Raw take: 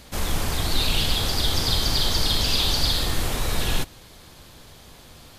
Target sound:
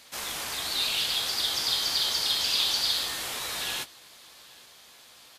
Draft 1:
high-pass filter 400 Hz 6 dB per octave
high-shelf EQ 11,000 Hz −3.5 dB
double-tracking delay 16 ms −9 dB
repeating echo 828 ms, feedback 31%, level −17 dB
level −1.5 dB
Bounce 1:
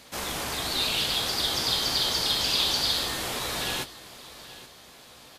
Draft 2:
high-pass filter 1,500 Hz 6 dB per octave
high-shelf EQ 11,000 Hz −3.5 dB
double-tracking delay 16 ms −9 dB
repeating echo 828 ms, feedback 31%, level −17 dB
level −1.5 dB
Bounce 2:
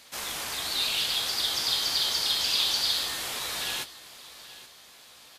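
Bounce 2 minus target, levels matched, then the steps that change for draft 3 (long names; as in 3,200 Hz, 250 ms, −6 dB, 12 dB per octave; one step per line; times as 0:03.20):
echo-to-direct +8 dB
change: repeating echo 828 ms, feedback 31%, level −25 dB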